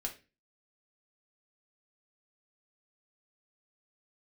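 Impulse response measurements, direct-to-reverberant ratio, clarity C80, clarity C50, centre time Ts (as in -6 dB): 0.5 dB, 19.0 dB, 12.5 dB, 11 ms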